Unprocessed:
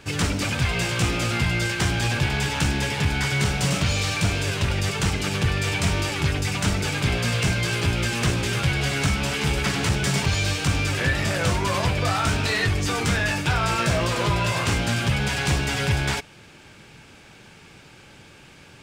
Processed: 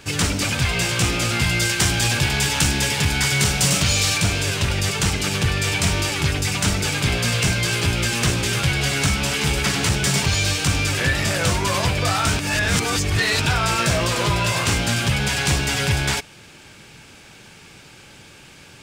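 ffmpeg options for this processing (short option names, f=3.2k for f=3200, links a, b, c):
-filter_complex "[0:a]asettb=1/sr,asplit=3[a][b][c];[a]atrim=end=1.414[d];[b]atrim=start=1.41:end=4.18,asetpts=PTS-STARTPTS,afade=t=in:d=0.004:c=qsin,afade=t=out:st=2.766:d=0.004:c=qsin,highshelf=f=4.5k:g=5[e];[c]atrim=start=4.176[f];[d][e]acrossfade=d=0.004:c1=hsin:c2=qsin[g];[g][f]acrossfade=d=0.004:c1=qsin:c2=hsin,asplit=3[h][i][j];[h]atrim=end=12.392[k];[i]atrim=start=12.388:end=13.462,asetpts=PTS-STARTPTS,areverse[l];[j]atrim=start=13.458[m];[k][l]acrossfade=d=0.004:c1=hsin:c2=hsin[n];[n][m]acrossfade=d=0.004:c1=hsin:c2=hsin,highshelf=f=3.8k:g=7,volume=1.5dB"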